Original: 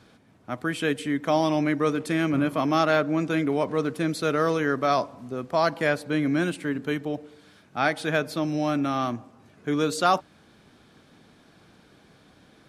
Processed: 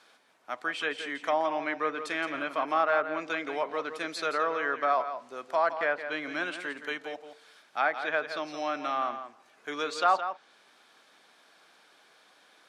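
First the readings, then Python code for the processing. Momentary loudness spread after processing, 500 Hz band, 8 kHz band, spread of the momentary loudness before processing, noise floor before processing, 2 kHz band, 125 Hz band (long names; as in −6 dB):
11 LU, −5.5 dB, −9.0 dB, 8 LU, −57 dBFS, −1.0 dB, −27.0 dB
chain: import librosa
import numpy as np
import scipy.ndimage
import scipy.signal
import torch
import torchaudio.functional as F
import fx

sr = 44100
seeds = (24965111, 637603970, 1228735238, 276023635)

p1 = scipy.signal.sosfilt(scipy.signal.butter(2, 730.0, 'highpass', fs=sr, output='sos'), x)
p2 = fx.env_lowpass_down(p1, sr, base_hz=1700.0, full_db=-24.0)
y = p2 + fx.echo_single(p2, sr, ms=169, db=-10.0, dry=0)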